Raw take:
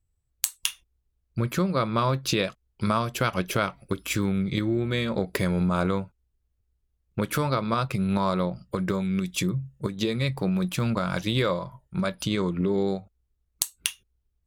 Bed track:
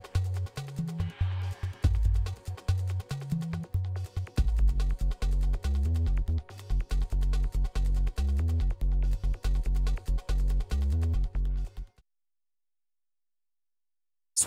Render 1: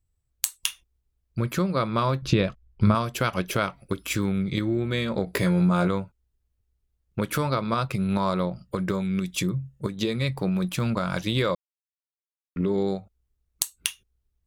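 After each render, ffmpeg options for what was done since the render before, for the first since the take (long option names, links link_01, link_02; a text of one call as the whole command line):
ffmpeg -i in.wav -filter_complex "[0:a]asettb=1/sr,asplit=3[link_01][link_02][link_03];[link_01]atrim=end=2.224[link_04];[link_02]atrim=start=2.22:end=2.95,asetpts=PTS-STARTPTS,afade=type=in:duration=0.004:curve=qsin,afade=type=out:start_time=0.726:duration=0.004:curve=qsin,aemphasis=mode=reproduction:type=bsi[link_05];[link_03]atrim=start=2.946[link_06];[link_04][link_05]acrossfade=duration=0.004:curve1=hsin:curve2=qsin[link_07];[link_07][link_06]acrossfade=duration=0.004:curve1=qsin:curve2=hsin,asettb=1/sr,asplit=3[link_08][link_09][link_10];[link_08]atrim=end=5.254[link_11];[link_09]atrim=start=5.25:end=5.88,asetpts=PTS-STARTPTS,afade=type=in:duration=0.004:curve=qsin,afade=type=out:start_time=0.626:duration=0.004:curve=qsin,asplit=2[link_12][link_13];[link_13]adelay=17,volume=-4dB[link_14];[link_12][link_14]amix=inputs=2:normalize=0,atrim=end_sample=27783[link_15];[link_10]atrim=start=5.876[link_16];[link_11][link_15]acrossfade=duration=0.004:curve1=hsin:curve2=qsin[link_17];[link_17][link_16]acrossfade=duration=0.004:curve1=qsin:curve2=hsin,asplit=3[link_18][link_19][link_20];[link_18]atrim=end=11.55,asetpts=PTS-STARTPTS,afade=type=out:start_time=11.546:duration=0.004:curve=hsin[link_21];[link_19]atrim=start=11.55:end=12.56,asetpts=PTS-STARTPTS,volume=0[link_22];[link_20]atrim=start=12.56,asetpts=PTS-STARTPTS,afade=type=in:duration=0.004:curve=hsin[link_23];[link_21][link_22][link_23]concat=n=3:v=0:a=1" out.wav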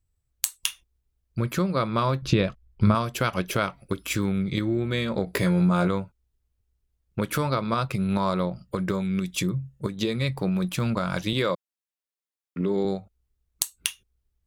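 ffmpeg -i in.wav -filter_complex "[0:a]asettb=1/sr,asplit=3[link_01][link_02][link_03];[link_01]atrim=end=11.334[link_04];[link_02]atrim=start=11.33:end=12.85,asetpts=PTS-STARTPTS,afade=type=in:duration=0.004:curve=qsin,afade=type=out:start_time=1.516:duration=0.004:curve=qsin,highpass=140[link_05];[link_03]atrim=start=12.846[link_06];[link_04][link_05]acrossfade=duration=0.004:curve1=hsin:curve2=qsin[link_07];[link_07][link_06]acrossfade=duration=0.004:curve1=qsin:curve2=hsin" out.wav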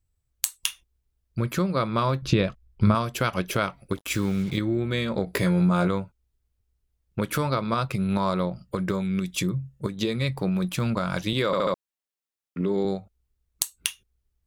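ffmpeg -i in.wav -filter_complex "[0:a]asplit=3[link_01][link_02][link_03];[link_01]afade=type=out:start_time=3.95:duration=0.02[link_04];[link_02]acrusher=bits=6:mix=0:aa=0.5,afade=type=in:start_time=3.95:duration=0.02,afade=type=out:start_time=4.56:duration=0.02[link_05];[link_03]afade=type=in:start_time=4.56:duration=0.02[link_06];[link_04][link_05][link_06]amix=inputs=3:normalize=0,asplit=5[link_07][link_08][link_09][link_10][link_11];[link_07]atrim=end=11.532[link_12];[link_08]atrim=start=11.458:end=11.532[link_13];[link_09]atrim=start=11.458:end=11.532[link_14];[link_10]atrim=start=11.458:end=11.532[link_15];[link_11]atrim=start=11.738[link_16];[link_12][link_13]acrossfade=duration=0.004:curve1=hsin:curve2=hsin[link_17];[link_17][link_14]acrossfade=duration=0.004:curve1=hsin:curve2=hsin[link_18];[link_18][link_15]acrossfade=duration=0.004:curve1=hsin:curve2=hsin[link_19];[link_19][link_16]acrossfade=duration=0.004:curve1=hsin:curve2=hsin" out.wav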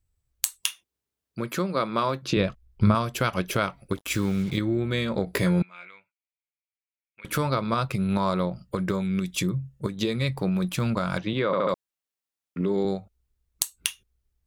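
ffmpeg -i in.wav -filter_complex "[0:a]asettb=1/sr,asplit=3[link_01][link_02][link_03];[link_01]atrim=end=0.614[link_04];[link_02]atrim=start=0.61:end=2.37,asetpts=PTS-STARTPTS,afade=type=in:duration=0.004:curve=qsin,afade=type=out:start_time=1.756:duration=0.004:curve=qsin,highpass=210[link_05];[link_03]atrim=start=2.366[link_06];[link_04][link_05]acrossfade=duration=0.004:curve1=hsin:curve2=qsin[link_07];[link_07][link_06]acrossfade=duration=0.004:curve1=qsin:curve2=hsin,asettb=1/sr,asplit=3[link_08][link_09][link_10];[link_08]atrim=end=5.624[link_11];[link_09]atrim=start=5.62:end=7.25,asetpts=PTS-STARTPTS,afade=type=in:duration=0.004:curve=qsin,afade=type=out:start_time=1.626:duration=0.004:curve=qsin,bandpass=frequency=2300:width_type=q:width=7.2[link_12];[link_10]atrim=start=7.246[link_13];[link_11][link_12]acrossfade=duration=0.004:curve1=hsin:curve2=qsin[link_14];[link_14][link_13]acrossfade=duration=0.004:curve1=qsin:curve2=hsin,asettb=1/sr,asplit=3[link_15][link_16][link_17];[link_15]atrim=end=11.184[link_18];[link_16]atrim=start=11.18:end=11.69,asetpts=PTS-STARTPTS,afade=type=in:duration=0.004:curve=qsin,afade=type=out:start_time=0.506:duration=0.004:curve=qsin,highpass=110,lowpass=2600[link_19];[link_17]atrim=start=11.686[link_20];[link_18][link_19]acrossfade=duration=0.004:curve1=hsin:curve2=qsin[link_21];[link_21][link_20]acrossfade=duration=0.004:curve1=qsin:curve2=hsin" out.wav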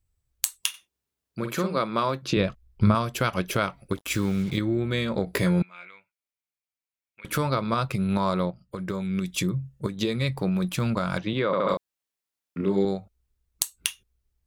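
ffmpeg -i in.wav -filter_complex "[0:a]asettb=1/sr,asplit=3[link_01][link_02][link_03];[link_01]atrim=end=0.694[link_04];[link_02]atrim=start=0.69:end=1.79,asetpts=PTS-STARTPTS,afade=type=in:duration=0.004:curve=qsin,afade=type=out:start_time=1.096:duration=0.004:curve=qsin,asplit=2[link_05][link_06];[link_06]adelay=49,volume=-6.5dB[link_07];[link_05][link_07]amix=inputs=2:normalize=0,atrim=end_sample=48510[link_08];[link_03]atrim=start=1.786[link_09];[link_04][link_08]acrossfade=duration=0.004:curve1=hsin:curve2=qsin[link_10];[link_10][link_09]acrossfade=duration=0.004:curve1=qsin:curve2=hsin,asettb=1/sr,asplit=3[link_11][link_12][link_13];[link_11]atrim=end=11.624[link_14];[link_12]atrim=start=11.62:end=12.85,asetpts=PTS-STARTPTS,afade=type=in:duration=0.004:curve=qsin,afade=type=out:start_time=1.226:duration=0.004:curve=qsin,asplit=2[link_15][link_16];[link_16]adelay=31,volume=-3.5dB[link_17];[link_15][link_17]amix=inputs=2:normalize=0,atrim=end_sample=54243[link_18];[link_13]atrim=start=12.846[link_19];[link_14][link_18]acrossfade=duration=0.004:curve1=hsin:curve2=qsin[link_20];[link_20][link_19]acrossfade=duration=0.004:curve1=qsin:curve2=hsin,asplit=2[link_21][link_22];[link_21]atrim=end=8.51,asetpts=PTS-STARTPTS,afade=type=out:start_time=8.506:duration=0.004:curve=hsin:silence=0.237137[link_23];[link_22]atrim=start=8.51,asetpts=PTS-STARTPTS,afade=type=in:duration=0.77:silence=0.237137[link_24];[link_23][link_24]concat=n=2:v=0:a=1" out.wav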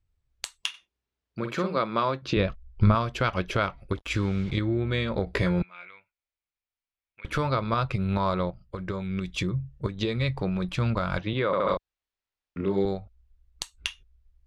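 ffmpeg -i in.wav -af "lowpass=4200,asubboost=boost=6.5:cutoff=67" out.wav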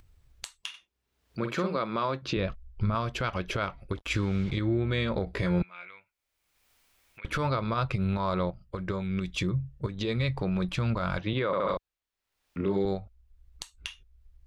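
ffmpeg -i in.wav -af "alimiter=limit=-18dB:level=0:latency=1:release=79,acompressor=mode=upward:threshold=-46dB:ratio=2.5" out.wav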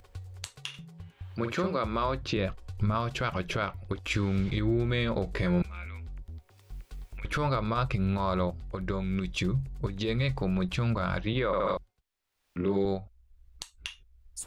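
ffmpeg -i in.wav -i bed.wav -filter_complex "[1:a]volume=-14dB[link_01];[0:a][link_01]amix=inputs=2:normalize=0" out.wav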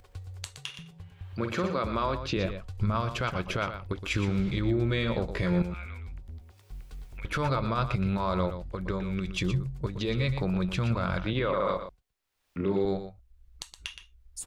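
ffmpeg -i in.wav -af "aecho=1:1:119:0.316" out.wav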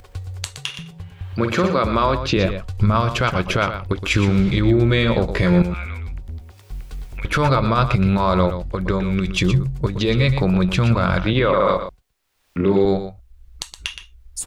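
ffmpeg -i in.wav -af "volume=11dB" out.wav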